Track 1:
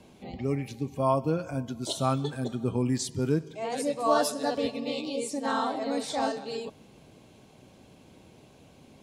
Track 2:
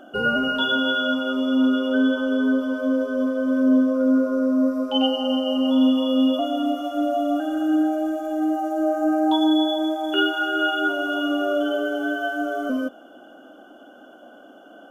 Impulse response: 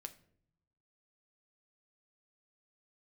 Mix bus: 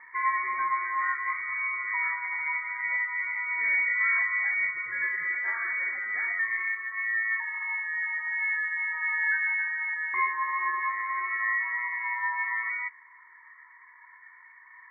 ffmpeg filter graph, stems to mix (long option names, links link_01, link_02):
-filter_complex "[0:a]alimiter=limit=-20.5dB:level=0:latency=1:release=63,volume=-0.5dB[link_01];[1:a]aphaser=in_gain=1:out_gain=1:delay=3:decay=0.23:speed=0.24:type=sinusoidal,volume=-0.5dB[link_02];[link_01][link_02]amix=inputs=2:normalize=0,highpass=380,flanger=delay=1:depth=2.9:regen=-73:speed=0.14:shape=triangular,lowpass=frequency=2100:width_type=q:width=0.5098,lowpass=frequency=2100:width_type=q:width=0.6013,lowpass=frequency=2100:width_type=q:width=0.9,lowpass=frequency=2100:width_type=q:width=2.563,afreqshift=-2500"